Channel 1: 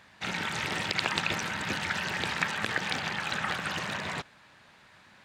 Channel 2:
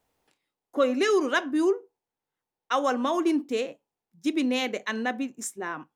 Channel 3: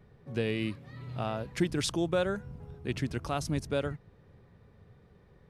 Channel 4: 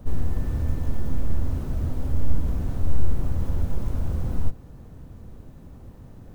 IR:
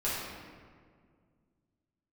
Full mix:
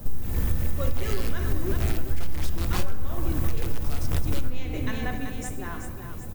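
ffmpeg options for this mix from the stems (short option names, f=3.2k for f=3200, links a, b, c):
-filter_complex "[0:a]volume=-12dB[a];[1:a]volume=-8dB,asplit=3[b][c][d];[c]volume=-9.5dB[e];[d]volume=-5.5dB[f];[2:a]equalizer=f=440:t=o:w=1.8:g=-4.5,aeval=exprs='(mod(17.8*val(0)+1,2)-1)/17.8':c=same,adelay=600,volume=2.5dB,asplit=2[g][h];[h]volume=-15dB[i];[3:a]aemphasis=mode=production:type=75fm,volume=0dB,asplit=2[j][k];[k]volume=-5.5dB[l];[4:a]atrim=start_sample=2205[m];[e][i][l]amix=inputs=3:normalize=0[n];[n][m]afir=irnorm=-1:irlink=0[o];[f]aecho=0:1:383|766|1149|1532|1915|2298|2681:1|0.49|0.24|0.118|0.0576|0.0282|0.0138[p];[a][b][g][j][o][p]amix=inputs=6:normalize=0,acompressor=threshold=-18dB:ratio=5"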